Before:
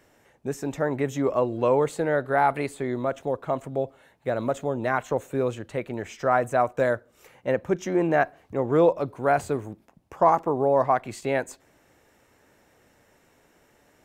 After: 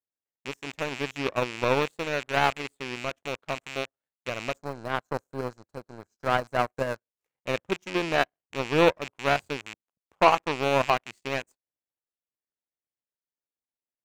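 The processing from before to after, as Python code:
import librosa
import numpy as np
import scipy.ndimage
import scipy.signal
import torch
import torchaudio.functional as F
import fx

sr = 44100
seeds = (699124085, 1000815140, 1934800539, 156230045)

y = fx.rattle_buzz(x, sr, strikes_db=-36.0, level_db=-17.0)
y = fx.spec_box(y, sr, start_s=4.56, length_s=2.47, low_hz=1700.0, high_hz=3900.0, gain_db=-23)
y = fx.power_curve(y, sr, exponent=2.0)
y = y * librosa.db_to_amplitude(4.0)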